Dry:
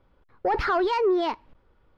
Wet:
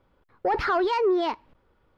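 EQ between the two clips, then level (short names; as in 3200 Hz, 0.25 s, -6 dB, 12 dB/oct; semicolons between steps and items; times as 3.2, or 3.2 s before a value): low shelf 62 Hz -7.5 dB; 0.0 dB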